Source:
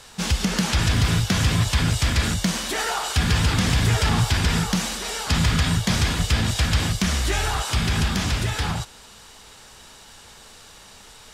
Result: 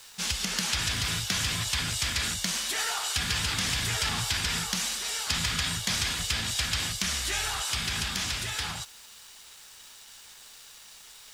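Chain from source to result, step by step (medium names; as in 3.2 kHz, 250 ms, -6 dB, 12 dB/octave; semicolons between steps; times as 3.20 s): small samples zeroed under -47 dBFS; tilt shelf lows -7.5 dB, about 1.1 kHz; trim -8 dB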